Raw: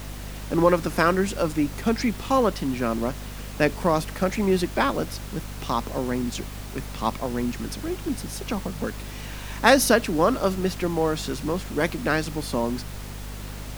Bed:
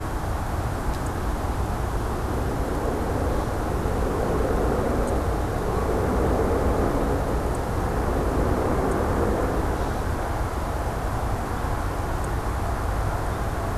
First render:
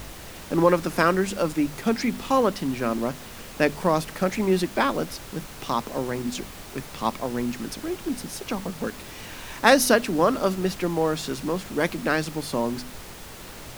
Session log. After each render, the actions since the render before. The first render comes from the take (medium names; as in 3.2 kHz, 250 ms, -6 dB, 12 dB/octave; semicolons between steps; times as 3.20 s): de-hum 50 Hz, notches 5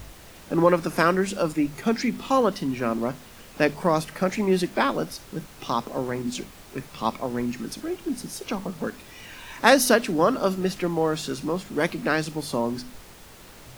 noise print and reduce 6 dB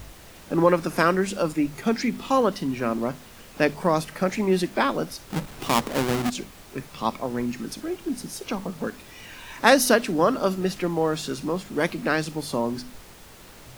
5.30–6.30 s: square wave that keeps the level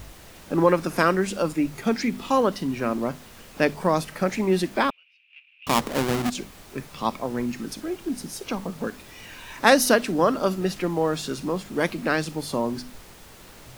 4.90–5.67 s: Butterworth band-pass 2.6 kHz, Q 5.7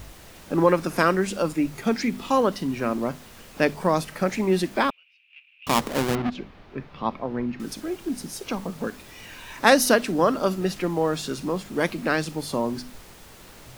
6.15–7.60 s: distance through air 310 m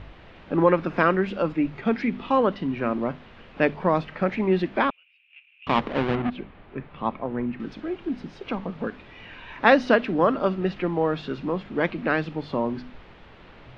low-pass 3.2 kHz 24 dB/octave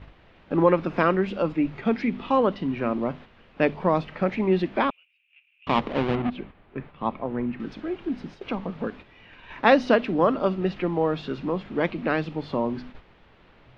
gate -41 dBFS, range -7 dB; dynamic bell 1.6 kHz, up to -4 dB, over -41 dBFS, Q 2.3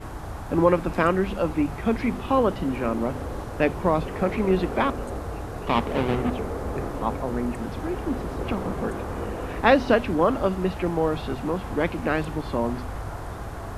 add bed -8 dB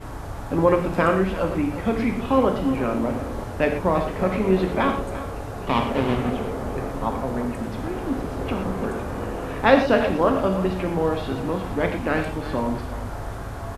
delay 345 ms -14 dB; gated-style reverb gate 140 ms flat, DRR 4 dB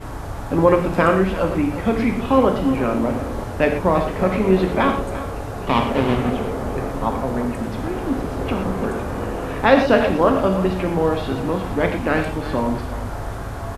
trim +3.5 dB; peak limiter -2 dBFS, peak gain reduction 2.5 dB